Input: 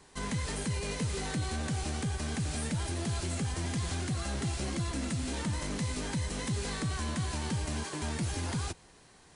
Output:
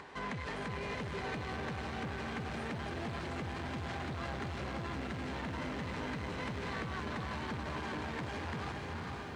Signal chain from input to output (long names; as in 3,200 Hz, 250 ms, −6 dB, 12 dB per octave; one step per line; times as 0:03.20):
low-pass filter 2,200 Hz 12 dB per octave
feedback delay with all-pass diffusion 478 ms, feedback 47%, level −5 dB
on a send at −16 dB: convolution reverb RT60 2.1 s, pre-delay 102 ms
on the sum: soft clipping −33 dBFS, distortion −11 dB
brickwall limiter −36 dBFS, peak gain reduction 3 dB
high-pass filter 61 Hz
low-shelf EQ 390 Hz −9.5 dB
upward compression, threshold −51 dBFS
feedback echo at a low word length 452 ms, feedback 80%, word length 12 bits, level −14 dB
level +6.5 dB